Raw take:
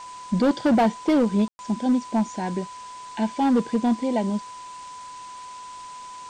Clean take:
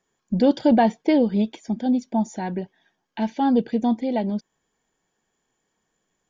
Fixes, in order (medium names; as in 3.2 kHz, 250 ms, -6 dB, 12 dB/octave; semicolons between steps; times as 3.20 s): clip repair -14.5 dBFS; band-stop 1 kHz, Q 30; room tone fill 1.48–1.59 s; noise reduction 30 dB, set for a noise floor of -40 dBFS